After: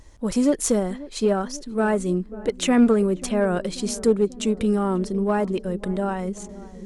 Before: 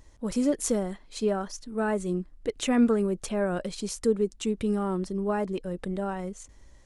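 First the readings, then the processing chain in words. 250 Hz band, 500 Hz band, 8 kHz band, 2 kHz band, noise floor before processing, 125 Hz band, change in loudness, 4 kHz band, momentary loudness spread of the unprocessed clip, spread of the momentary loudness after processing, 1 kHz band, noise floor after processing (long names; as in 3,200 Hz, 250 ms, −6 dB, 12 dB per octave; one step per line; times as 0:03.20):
+6.0 dB, +5.5 dB, +6.0 dB, +5.5 dB, −55 dBFS, +6.0 dB, +5.5 dB, +6.0 dB, 10 LU, 9 LU, +6.0 dB, −43 dBFS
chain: in parallel at −6.5 dB: asymmetric clip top −24 dBFS
on the sum: feedback echo with a low-pass in the loop 538 ms, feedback 75%, low-pass 850 Hz, level −17 dB
level +2.5 dB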